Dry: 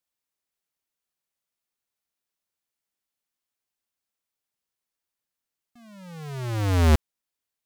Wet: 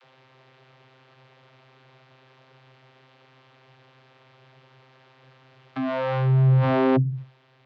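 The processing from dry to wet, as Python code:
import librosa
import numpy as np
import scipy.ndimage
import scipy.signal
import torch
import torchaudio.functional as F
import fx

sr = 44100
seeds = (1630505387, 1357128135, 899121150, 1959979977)

p1 = scipy.signal.sosfilt(scipy.signal.butter(4, 3800.0, 'lowpass', fs=sr, output='sos'), x)
p2 = fx.peak_eq(p1, sr, hz=280.0, db=-12.5, octaves=0.34)
p3 = fx.rider(p2, sr, range_db=10, speed_s=0.5)
p4 = p2 + (p3 * librosa.db_to_amplitude(2.0))
p5 = fx.vocoder(p4, sr, bands=32, carrier='saw', carrier_hz=131.0)
y = fx.env_flatten(p5, sr, amount_pct=70)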